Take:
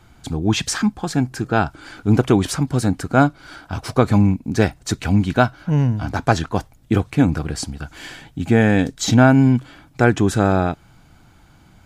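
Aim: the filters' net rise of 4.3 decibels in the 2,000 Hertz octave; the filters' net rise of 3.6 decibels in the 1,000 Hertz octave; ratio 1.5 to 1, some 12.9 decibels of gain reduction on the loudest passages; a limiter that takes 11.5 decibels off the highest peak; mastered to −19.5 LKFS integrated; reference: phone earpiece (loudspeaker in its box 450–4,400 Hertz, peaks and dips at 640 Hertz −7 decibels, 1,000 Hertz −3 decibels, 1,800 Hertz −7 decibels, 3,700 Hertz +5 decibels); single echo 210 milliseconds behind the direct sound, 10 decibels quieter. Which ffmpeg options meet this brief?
ffmpeg -i in.wav -af "equalizer=frequency=1000:width_type=o:gain=7.5,equalizer=frequency=2000:width_type=o:gain=7,acompressor=threshold=-42dB:ratio=1.5,alimiter=limit=-19dB:level=0:latency=1,highpass=450,equalizer=frequency=640:width_type=q:width=4:gain=-7,equalizer=frequency=1000:width_type=q:width=4:gain=-3,equalizer=frequency=1800:width_type=q:width=4:gain=-7,equalizer=frequency=3700:width_type=q:width=4:gain=5,lowpass=frequency=4400:width=0.5412,lowpass=frequency=4400:width=1.3066,aecho=1:1:210:0.316,volume=17.5dB" out.wav

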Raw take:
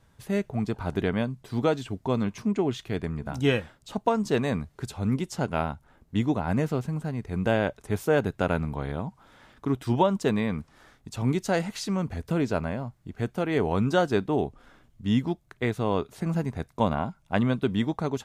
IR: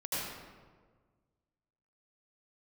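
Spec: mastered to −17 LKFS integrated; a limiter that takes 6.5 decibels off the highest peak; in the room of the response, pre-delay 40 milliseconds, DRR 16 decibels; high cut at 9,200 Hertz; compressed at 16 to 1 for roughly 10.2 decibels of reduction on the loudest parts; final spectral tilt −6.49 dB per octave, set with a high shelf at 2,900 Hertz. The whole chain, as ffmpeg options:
-filter_complex "[0:a]lowpass=9200,highshelf=frequency=2900:gain=-6,acompressor=threshold=-28dB:ratio=16,alimiter=limit=-24dB:level=0:latency=1,asplit=2[link_01][link_02];[1:a]atrim=start_sample=2205,adelay=40[link_03];[link_02][link_03]afir=irnorm=-1:irlink=0,volume=-21dB[link_04];[link_01][link_04]amix=inputs=2:normalize=0,volume=19dB"

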